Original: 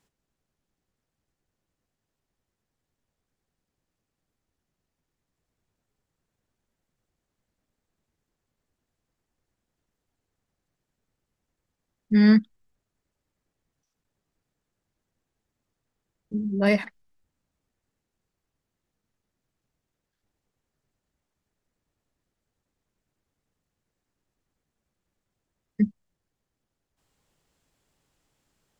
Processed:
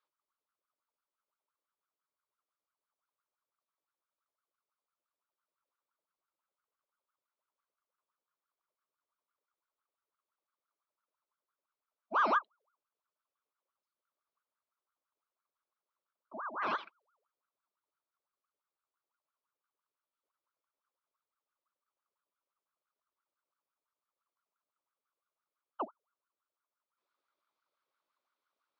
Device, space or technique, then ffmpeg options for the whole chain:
voice changer toy: -af "aeval=exprs='val(0)*sin(2*PI*930*n/s+930*0.55/5.9*sin(2*PI*5.9*n/s))':channel_layout=same,highpass=430,equalizer=frequency=460:width_type=q:width=4:gain=-6,equalizer=frequency=750:width_type=q:width=4:gain=-9,equalizer=frequency=1200:width_type=q:width=4:gain=4,equalizer=frequency=1800:width_type=q:width=4:gain=-7,equalizer=frequency=2800:width_type=q:width=4:gain=-5,lowpass=frequency=4300:width=0.5412,lowpass=frequency=4300:width=1.3066,volume=-8dB"

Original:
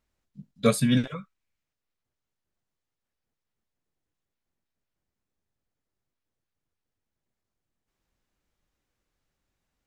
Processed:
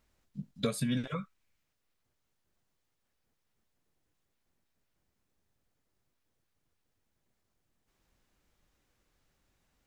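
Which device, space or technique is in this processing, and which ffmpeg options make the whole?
serial compression, peaks first: -af "acompressor=threshold=-29dB:ratio=6,acompressor=threshold=-42dB:ratio=1.5,volume=5.5dB"

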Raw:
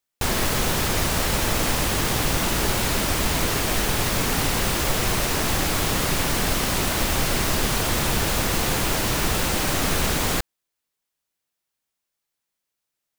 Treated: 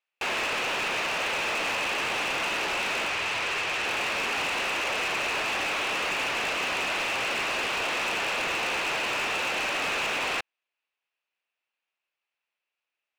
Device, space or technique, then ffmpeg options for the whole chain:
megaphone: -filter_complex "[0:a]highpass=520,lowpass=2900,equalizer=frequency=2600:width_type=o:width=0.35:gain=11.5,asoftclip=type=hard:threshold=-25.5dB,asettb=1/sr,asplit=3[link_01][link_02][link_03];[link_01]atrim=end=3.084[link_04];[link_02]atrim=start=3.08:end=3.85,asetpts=PTS-STARTPTS,afade=type=in:duration=0.004:curve=qsin,afade=type=out:start_time=0.766:duration=0.004:curve=qsin,equalizer=frequency=100:width_type=o:width=0.67:gain=5,equalizer=frequency=250:width_type=o:width=0.67:gain=-7,equalizer=frequency=630:width_type=o:width=0.67:gain=-3,equalizer=frequency=16000:width_type=o:width=0.67:gain=-8[link_05];[link_03]atrim=start=3.846[link_06];[link_04][link_05]acrossfade=duration=0.004:curve1=hsin:curve2=qsin[link_07];[link_07][link_06]acrossfade=duration=0.004:curve1=qsin:curve2=hsin"

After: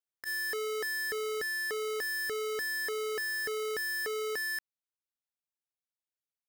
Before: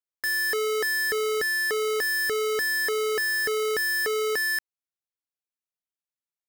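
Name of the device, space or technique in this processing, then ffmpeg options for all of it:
clipper into limiter: -af "asoftclip=type=hard:threshold=-27dB,alimiter=level_in=7dB:limit=-24dB:level=0:latency=1:release=50,volume=-7dB,volume=-3dB"

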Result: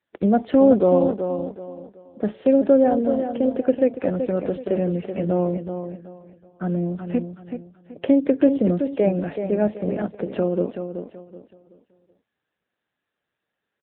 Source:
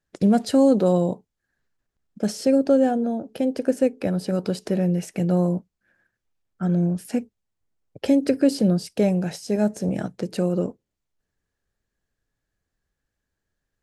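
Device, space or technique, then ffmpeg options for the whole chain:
telephone: -af "highpass=250,lowpass=3000,aecho=1:1:378|756|1134|1512:0.398|0.127|0.0408|0.013,volume=3.5dB" -ar 8000 -c:a libopencore_amrnb -b:a 7950

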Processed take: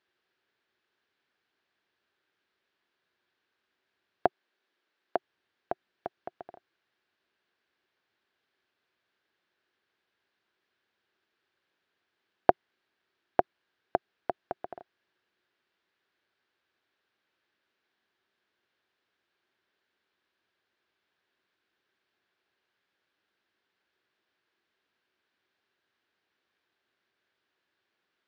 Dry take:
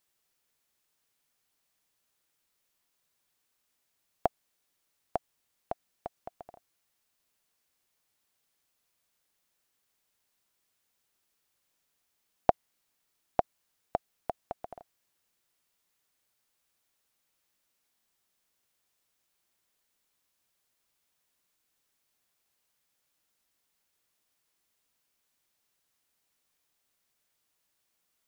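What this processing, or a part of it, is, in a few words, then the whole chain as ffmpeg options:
guitar cabinet: -filter_complex "[0:a]asettb=1/sr,asplit=3[link_01][link_02][link_03];[link_01]atrim=end=4.264[link_04];[link_02]atrim=start=4.26:end=5.16,asetpts=PTS-STARTPTS,afade=type=in:duration=0.004:curve=qsin,afade=type=out:start_time=0.896:duration=0.004:curve=qsin,highpass=210[link_05];[link_03]atrim=start=5.156[link_06];[link_04][link_05]acrossfade=duration=0.004:curve1=hsin:curve2=qsin[link_07];[link_07][link_06]acrossfade=duration=0.004:curve1=qsin:curve2=hsin,highpass=93,equalizer=frequency=150:width_type=q:width=4:gain=-5,equalizer=frequency=370:width_type=q:width=4:gain=9,equalizer=frequency=1600:width_type=q:width=4:gain=8,lowpass=frequency=4100:width=0.5412,lowpass=frequency=4100:width=1.3066,volume=2dB"

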